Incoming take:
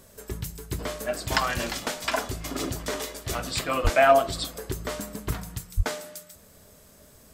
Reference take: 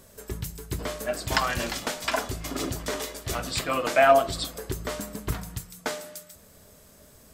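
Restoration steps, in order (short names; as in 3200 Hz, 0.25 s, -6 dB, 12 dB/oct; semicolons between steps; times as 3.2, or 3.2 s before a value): 3.83–3.95 HPF 140 Hz 24 dB/oct; 5.76–5.88 HPF 140 Hz 24 dB/oct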